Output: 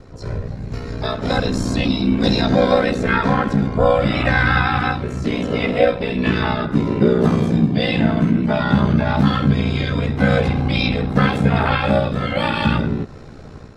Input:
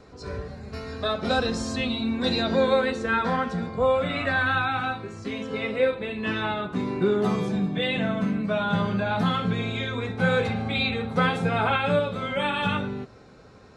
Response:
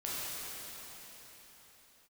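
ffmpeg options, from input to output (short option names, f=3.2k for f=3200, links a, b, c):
-filter_complex "[0:a]lowshelf=f=190:g=12,dynaudnorm=f=970:g=3:m=11.5dB,aeval=exprs='val(0)*sin(2*PI*30*n/s)':c=same,asplit=2[a][b];[b]acompressor=threshold=-27dB:ratio=6,volume=-1dB[c];[a][c]amix=inputs=2:normalize=0,asplit=2[d][e];[e]asetrate=58866,aresample=44100,atempo=0.749154,volume=-9dB[f];[d][f]amix=inputs=2:normalize=0,volume=-1dB"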